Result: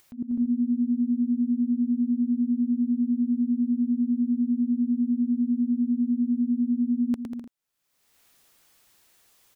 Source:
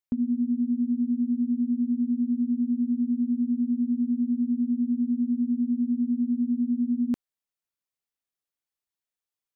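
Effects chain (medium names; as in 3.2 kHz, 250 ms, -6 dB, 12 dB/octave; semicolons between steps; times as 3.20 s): bouncing-ball echo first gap 110 ms, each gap 0.75×, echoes 5; slow attack 153 ms; upward compressor, threshold -39 dBFS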